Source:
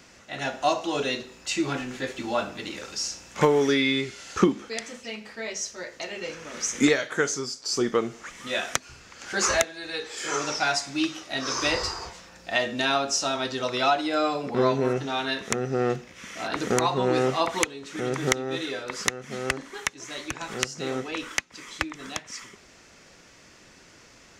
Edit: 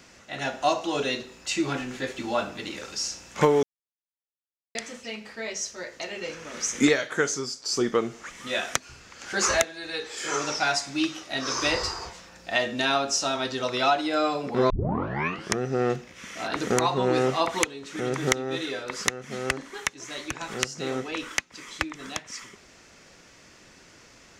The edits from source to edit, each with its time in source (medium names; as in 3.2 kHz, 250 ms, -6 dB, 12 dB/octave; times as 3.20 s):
3.63–4.75 s: mute
14.70 s: tape start 0.90 s